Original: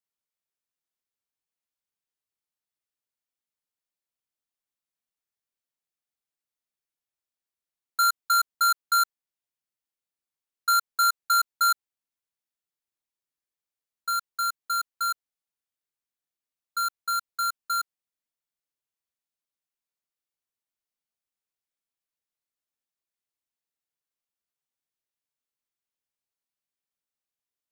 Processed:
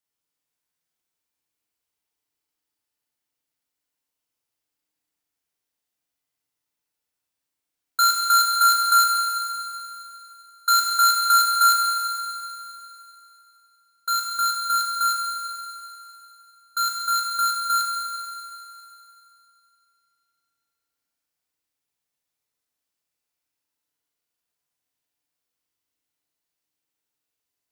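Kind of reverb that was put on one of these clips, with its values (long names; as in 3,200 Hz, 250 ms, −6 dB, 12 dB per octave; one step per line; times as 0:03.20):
feedback delay network reverb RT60 2.9 s, high-frequency decay 1×, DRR −2.5 dB
level +3.5 dB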